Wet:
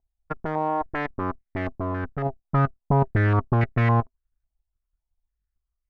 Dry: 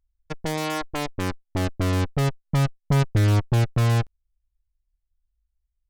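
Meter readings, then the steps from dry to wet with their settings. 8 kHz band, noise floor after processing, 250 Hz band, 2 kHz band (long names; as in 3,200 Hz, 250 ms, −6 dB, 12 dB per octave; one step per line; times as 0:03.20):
below −30 dB, −83 dBFS, −0.5 dB, +1.5 dB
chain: output level in coarse steps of 10 dB
hollow resonant body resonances 250/390/660 Hz, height 8 dB, ringing for 65 ms
low-pass on a step sequencer 3.6 Hz 790–2,000 Hz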